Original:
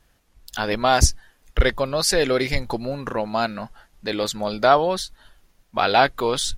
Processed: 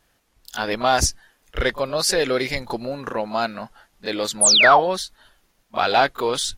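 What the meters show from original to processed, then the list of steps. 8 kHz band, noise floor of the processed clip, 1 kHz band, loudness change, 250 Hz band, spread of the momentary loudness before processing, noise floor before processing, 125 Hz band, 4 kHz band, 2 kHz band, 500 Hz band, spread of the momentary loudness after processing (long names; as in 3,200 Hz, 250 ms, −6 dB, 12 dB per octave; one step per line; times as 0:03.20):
+6.0 dB, −65 dBFS, +1.0 dB, +2.0 dB, −2.0 dB, 13 LU, −63 dBFS, −6.0 dB, +4.5 dB, +4.0 dB, −0.5 dB, 17 LU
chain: low-shelf EQ 130 Hz −10 dB
in parallel at −6.5 dB: soft clipping −12.5 dBFS, distortion −13 dB
on the sum: echo ahead of the sound 32 ms −15 dB
sound drawn into the spectrogram fall, 0:04.41–0:04.80, 640–11,000 Hz −11 dBFS
level −3 dB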